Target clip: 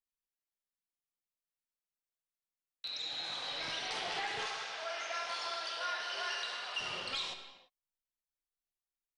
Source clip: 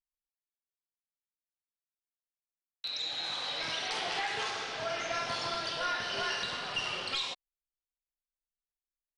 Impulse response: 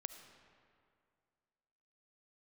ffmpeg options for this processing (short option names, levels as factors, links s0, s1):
-filter_complex "[0:a]asettb=1/sr,asplit=3[s0][s1][s2];[s0]atrim=end=4.464[s3];[s1]atrim=start=4.46:end=6.8,asetpts=PTS-STARTPTS,afade=t=in:d=0.004:c=qsin,afade=t=out:st=2.336:d=0.004:c=qsin,highpass=610[s4];[s2]atrim=start=6.796[s5];[s3][s4]acrossfade=d=0.004:c1=hsin:c2=qsin[s6];[s6][s5]acrossfade=d=0.004:c1=qsin:c2=hsin[s7];[1:a]atrim=start_sample=2205,afade=t=out:st=0.4:d=0.01,atrim=end_sample=18081[s8];[s7][s8]afir=irnorm=-1:irlink=0"